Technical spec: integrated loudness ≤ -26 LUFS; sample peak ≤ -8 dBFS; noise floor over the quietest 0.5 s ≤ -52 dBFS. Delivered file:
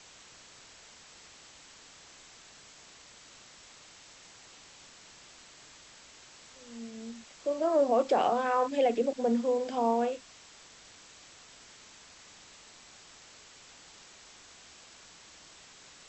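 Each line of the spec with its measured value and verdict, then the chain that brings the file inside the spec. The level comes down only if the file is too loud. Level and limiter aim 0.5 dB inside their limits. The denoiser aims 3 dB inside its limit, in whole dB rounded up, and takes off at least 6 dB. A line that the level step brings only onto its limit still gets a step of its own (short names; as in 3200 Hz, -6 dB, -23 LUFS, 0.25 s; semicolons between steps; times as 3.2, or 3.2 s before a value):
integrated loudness -29.0 LUFS: OK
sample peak -15.5 dBFS: OK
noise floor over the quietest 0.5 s -54 dBFS: OK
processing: none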